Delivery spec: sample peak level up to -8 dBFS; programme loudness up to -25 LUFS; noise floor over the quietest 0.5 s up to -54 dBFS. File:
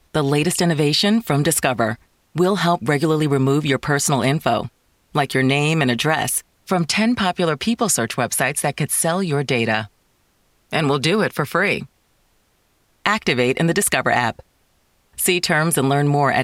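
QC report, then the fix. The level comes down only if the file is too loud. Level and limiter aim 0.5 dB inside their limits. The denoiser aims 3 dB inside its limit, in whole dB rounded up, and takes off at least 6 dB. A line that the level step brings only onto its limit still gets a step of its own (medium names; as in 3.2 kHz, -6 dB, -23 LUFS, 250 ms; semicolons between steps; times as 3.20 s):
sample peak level -2.0 dBFS: fail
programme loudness -19.0 LUFS: fail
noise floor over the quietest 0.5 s -62 dBFS: pass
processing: trim -6.5 dB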